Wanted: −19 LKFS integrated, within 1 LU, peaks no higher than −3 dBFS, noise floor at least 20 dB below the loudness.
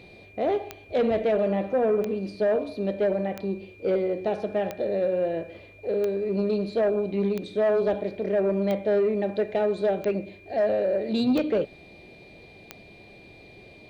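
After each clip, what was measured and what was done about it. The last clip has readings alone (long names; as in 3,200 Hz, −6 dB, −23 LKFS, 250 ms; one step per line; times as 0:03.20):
number of clicks 10; interfering tone 2,400 Hz; level of the tone −51 dBFS; integrated loudness −26.0 LKFS; sample peak −16.0 dBFS; target loudness −19.0 LKFS
→ click removal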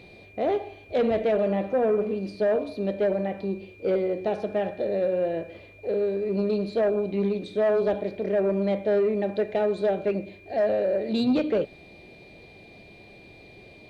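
number of clicks 0; interfering tone 2,400 Hz; level of the tone −51 dBFS
→ notch filter 2,400 Hz, Q 30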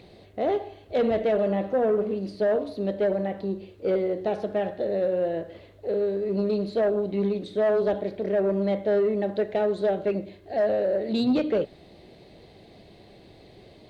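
interfering tone none found; integrated loudness −26.0 LKFS; sample peak −16.0 dBFS; target loudness −19.0 LKFS
→ level +7 dB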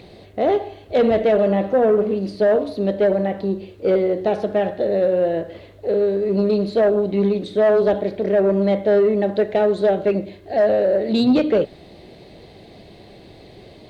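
integrated loudness −19.0 LKFS; sample peak −9.0 dBFS; background noise floor −45 dBFS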